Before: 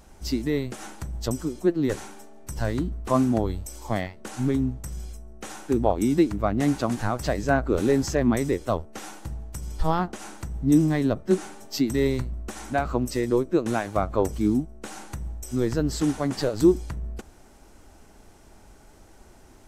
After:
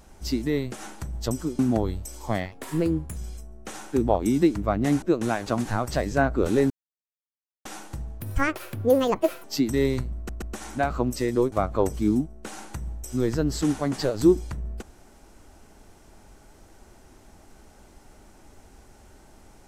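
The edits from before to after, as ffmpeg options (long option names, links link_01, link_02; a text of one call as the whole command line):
ffmpeg -i in.wav -filter_complex "[0:a]asplit=13[link_01][link_02][link_03][link_04][link_05][link_06][link_07][link_08][link_09][link_10][link_11][link_12][link_13];[link_01]atrim=end=1.592[link_14];[link_02]atrim=start=3.198:end=4.134[link_15];[link_03]atrim=start=4.13:end=4.92,asetpts=PTS-STARTPTS,asetrate=54243,aresample=44100,atrim=end_sample=28324,asetpts=PTS-STARTPTS[link_16];[link_04]atrim=start=4.916:end=6.782[link_17];[link_05]atrim=start=13.468:end=13.912[link_18];[link_06]atrim=start=6.778:end=8.02,asetpts=PTS-STARTPTS,afade=type=out:start_time=1.238:duration=0.004:curve=hsin[link_19];[link_07]atrim=start=8.02:end=8.97,asetpts=PTS-STARTPTS,volume=0[link_20];[link_08]atrim=start=8.97:end=9.524,asetpts=PTS-STARTPTS,afade=type=in:duration=0.004:curve=hsin[link_21];[link_09]atrim=start=9.52:end=11.65,asetpts=PTS-STARTPTS,asetrate=75852,aresample=44100,atrim=end_sample=54612,asetpts=PTS-STARTPTS[link_22];[link_10]atrim=start=11.646:end=12.502[link_23];[link_11]atrim=start=12.368:end=12.502[link_24];[link_12]atrim=start=12.368:end=13.472[link_25];[link_13]atrim=start=13.908[link_26];[link_14][link_15]acrossfade=duration=0.004:curve1=hsin:curve2=hsin[link_27];[link_27][link_16]acrossfade=duration=0.004:curve1=hsin:curve2=hsin[link_28];[link_28][link_17]acrossfade=duration=0.004:curve1=hsin:curve2=hsin[link_29];[link_29][link_18]acrossfade=duration=0.004:curve1=hsin:curve2=hsin[link_30];[link_19][link_20][link_21]concat=n=3:v=0:a=1[link_31];[link_30][link_31]acrossfade=duration=0.004:curve1=hsin:curve2=hsin[link_32];[link_32][link_22]acrossfade=duration=0.004:curve1=hsin:curve2=hsin[link_33];[link_33][link_23]acrossfade=duration=0.004:curve1=hsin:curve2=hsin[link_34];[link_34][link_24]acrossfade=duration=0.004:curve1=hsin:curve2=hsin[link_35];[link_35][link_25]acrossfade=duration=0.004:curve1=hsin:curve2=hsin[link_36];[link_36][link_26]acrossfade=duration=0.004:curve1=hsin:curve2=hsin" out.wav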